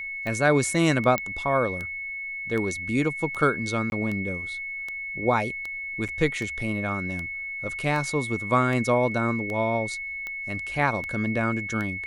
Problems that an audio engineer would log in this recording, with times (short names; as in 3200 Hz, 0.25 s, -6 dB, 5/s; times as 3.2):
tick 78 rpm -20 dBFS
tone 2200 Hz -31 dBFS
1.18 pop -11 dBFS
3.9–3.92 gap 21 ms
6.08–6.09 gap 6.8 ms